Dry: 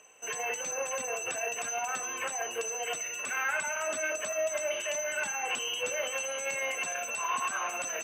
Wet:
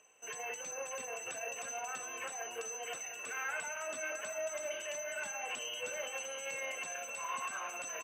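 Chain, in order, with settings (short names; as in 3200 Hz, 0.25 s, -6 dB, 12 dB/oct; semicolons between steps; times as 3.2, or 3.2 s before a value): echo 0.702 s -10.5 dB; gain -8 dB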